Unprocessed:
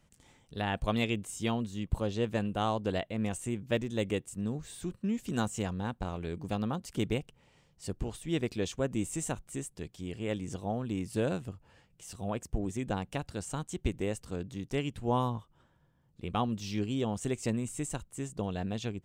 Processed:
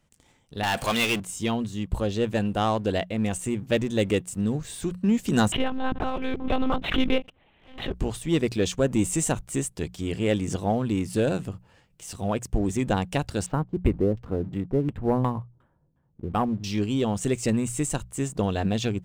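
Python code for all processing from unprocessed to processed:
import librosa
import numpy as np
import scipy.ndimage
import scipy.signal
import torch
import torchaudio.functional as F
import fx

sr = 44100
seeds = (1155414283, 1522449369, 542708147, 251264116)

y = fx.chain(x, sr, fx.highpass(hz=1100.0, slope=6),
    fx.power_curve(exponent=0.5), at=(0.63, 1.2))
y = fx.chain(y, sr, fx.highpass(hz=190.0, slope=12),
    fx.lpc_monotone(seeds[0], pitch_hz=260.0, order=10),
    fx.pre_swell(db_per_s=100.0), at=(5.52, 7.95))
y = fx.chain(y, sr, fx.filter_lfo_lowpass(shape='saw_down', hz=2.8, low_hz=300.0, high_hz=2800.0, q=0.79),
    fx.resample_linear(factor=4), at=(13.46, 16.64))
y = fx.leveller(y, sr, passes=1)
y = fx.hum_notches(y, sr, base_hz=60, count=3)
y = fx.rider(y, sr, range_db=10, speed_s=2.0)
y = y * librosa.db_to_amplitude(5.0)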